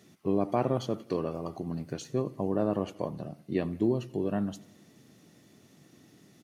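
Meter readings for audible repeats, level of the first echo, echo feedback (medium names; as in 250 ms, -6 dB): 3, -22.5 dB, 56%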